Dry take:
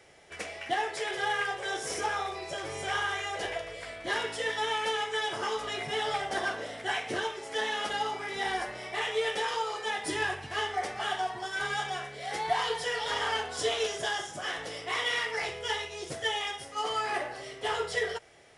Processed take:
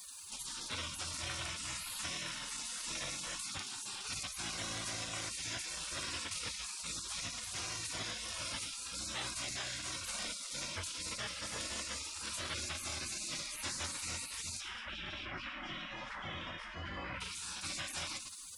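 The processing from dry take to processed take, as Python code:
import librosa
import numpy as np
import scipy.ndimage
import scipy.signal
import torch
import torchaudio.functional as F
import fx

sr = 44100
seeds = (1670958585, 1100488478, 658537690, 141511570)

y = fx.lowpass(x, sr, hz=1000.0, slope=12, at=(14.6, 17.2), fade=0.02)
y = fx.echo_feedback(y, sr, ms=110, feedback_pct=31, wet_db=-18.0)
y = fx.spec_gate(y, sr, threshold_db=-25, keep='weak')
y = fx.peak_eq(y, sr, hz=88.0, db=11.0, octaves=0.54)
y = fx.env_flatten(y, sr, amount_pct=70)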